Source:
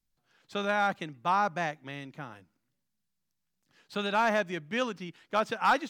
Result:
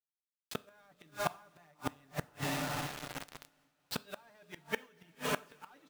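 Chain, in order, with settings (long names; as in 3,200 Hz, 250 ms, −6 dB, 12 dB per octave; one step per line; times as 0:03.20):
noise gate −54 dBFS, range −6 dB
mains-hum notches 60/120/180/240/300/360/420/480/540 Hz
comb filter 6.8 ms, depth 66%
reversed playback
downward compressor 5 to 1, threshold −37 dBFS, peak gain reduction 17 dB
reversed playback
feedback delay with all-pass diffusion 474 ms, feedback 48%, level −10.5 dB
in parallel at −4 dB: soft clipping −35 dBFS, distortion −13 dB
on the sum: bit reduction 8 bits
gate with flip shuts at −30 dBFS, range −37 dB
coupled-rooms reverb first 0.4 s, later 4.4 s, from −20 dB, DRR 17 dB
amplitude modulation by smooth noise, depth 55%
level +13 dB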